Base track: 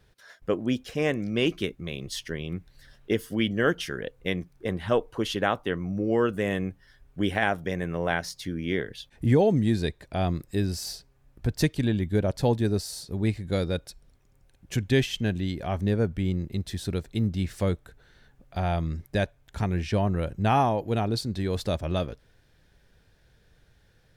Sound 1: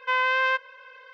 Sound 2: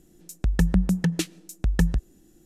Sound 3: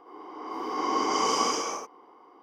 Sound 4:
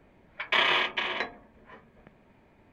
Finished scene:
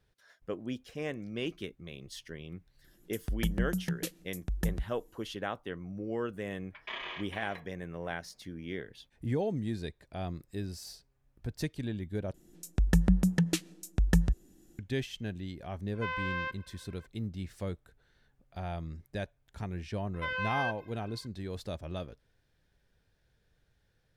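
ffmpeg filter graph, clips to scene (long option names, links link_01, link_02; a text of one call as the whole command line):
ffmpeg -i bed.wav -i cue0.wav -i cue1.wav -i cue2.wav -i cue3.wav -filter_complex "[2:a]asplit=2[link_01][link_02];[1:a]asplit=2[link_03][link_04];[0:a]volume=-11dB[link_05];[link_01]equalizer=frequency=12000:width_type=o:width=0.42:gain=11.5[link_06];[4:a]aresample=16000,aresample=44100[link_07];[link_04]asplit=2[link_08][link_09];[link_09]adelay=2.4,afreqshift=-2.9[link_10];[link_08][link_10]amix=inputs=2:normalize=1[link_11];[link_05]asplit=2[link_12][link_13];[link_12]atrim=end=12.344[link_14];[link_02]atrim=end=2.45,asetpts=PTS-STARTPTS,volume=-3.5dB[link_15];[link_13]atrim=start=14.786[link_16];[link_06]atrim=end=2.45,asetpts=PTS-STARTPTS,volume=-10.5dB,afade=type=in:duration=0.004:curve=hsin,afade=type=out:start_time=2.446:duration=0.004:curve=hsin,adelay=2840[link_17];[link_07]atrim=end=2.72,asetpts=PTS-STARTPTS,volume=-16.5dB,afade=type=in:duration=0.004:curve=hsin,afade=type=out:start_time=2.716:duration=0.004:curve=hsin,adelay=6350[link_18];[link_03]atrim=end=1.13,asetpts=PTS-STARTPTS,volume=-12.5dB,afade=type=in:duration=0.004:curve=hsin,afade=type=out:start_time=1.126:duration=0.004:curve=hsin,adelay=15940[link_19];[link_11]atrim=end=1.13,asetpts=PTS-STARTPTS,volume=-8dB,afade=type=in:duration=0.004:curve=hsin,afade=type=out:start_time=1.126:duration=0.004:curve=hsin,adelay=20140[link_20];[link_14][link_15]acrossfade=duration=0.004:curve1=hsin:curve2=hsin[link_21];[link_21][link_16]acrossfade=duration=0.004:curve1=hsin:curve2=hsin[link_22];[link_22][link_17][link_18][link_19][link_20]amix=inputs=5:normalize=0" out.wav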